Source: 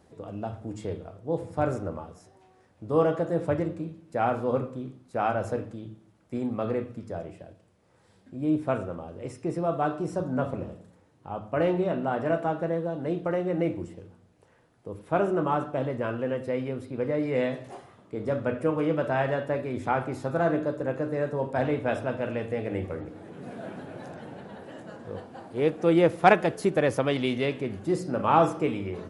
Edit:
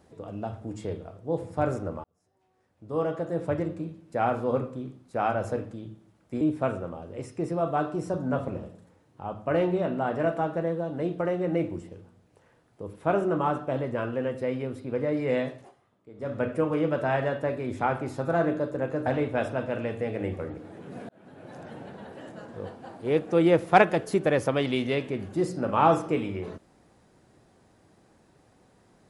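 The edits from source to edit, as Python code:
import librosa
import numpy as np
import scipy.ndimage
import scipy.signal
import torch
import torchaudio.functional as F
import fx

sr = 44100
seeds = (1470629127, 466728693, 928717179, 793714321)

y = fx.edit(x, sr, fx.fade_in_span(start_s=2.04, length_s=1.77),
    fx.cut(start_s=6.41, length_s=2.06),
    fx.fade_down_up(start_s=17.52, length_s=0.95, db=-14.5, fade_s=0.26),
    fx.cut(start_s=21.12, length_s=0.45),
    fx.fade_in_span(start_s=23.6, length_s=0.63), tone=tone)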